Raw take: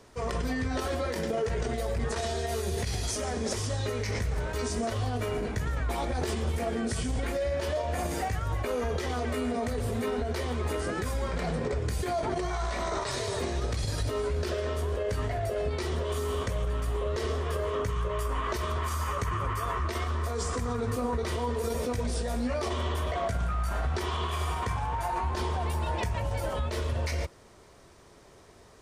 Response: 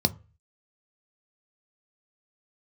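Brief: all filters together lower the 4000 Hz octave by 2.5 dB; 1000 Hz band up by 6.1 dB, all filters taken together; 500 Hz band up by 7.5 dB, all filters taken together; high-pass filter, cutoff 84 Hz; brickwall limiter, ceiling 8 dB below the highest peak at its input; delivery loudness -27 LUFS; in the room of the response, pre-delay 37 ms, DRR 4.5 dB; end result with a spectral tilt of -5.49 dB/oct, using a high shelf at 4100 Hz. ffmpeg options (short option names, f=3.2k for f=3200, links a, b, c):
-filter_complex "[0:a]highpass=84,equalizer=f=500:t=o:g=8,equalizer=f=1k:t=o:g=5,equalizer=f=4k:t=o:g=-6.5,highshelf=f=4.1k:g=4.5,alimiter=limit=-20.5dB:level=0:latency=1,asplit=2[a][b];[1:a]atrim=start_sample=2205,adelay=37[c];[b][c]afir=irnorm=-1:irlink=0,volume=-14.5dB[d];[a][d]amix=inputs=2:normalize=0,volume=-1.5dB"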